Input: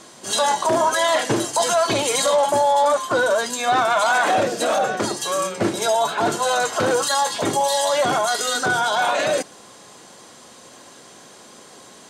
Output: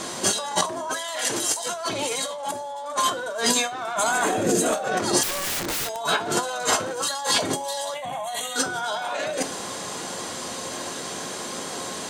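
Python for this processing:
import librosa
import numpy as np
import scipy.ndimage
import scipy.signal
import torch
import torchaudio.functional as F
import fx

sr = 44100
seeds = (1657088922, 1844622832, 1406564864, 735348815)

y = fx.tilt_eq(x, sr, slope=2.5, at=(0.97, 1.66))
y = fx.spec_box(y, sr, start_s=3.97, length_s=0.79, low_hz=470.0, high_hz=6100.0, gain_db=-9)
y = fx.over_compress(y, sr, threshold_db=-30.0, ratio=-1.0)
y = fx.fixed_phaser(y, sr, hz=1400.0, stages=6, at=(7.94, 8.56))
y = fx.comb_fb(y, sr, f0_hz=89.0, decay_s=0.28, harmonics='all', damping=0.0, mix_pct=60)
y = fx.overflow_wrap(y, sr, gain_db=30.5, at=(5.23, 5.97))
y = F.gain(torch.from_numpy(y), 8.5).numpy()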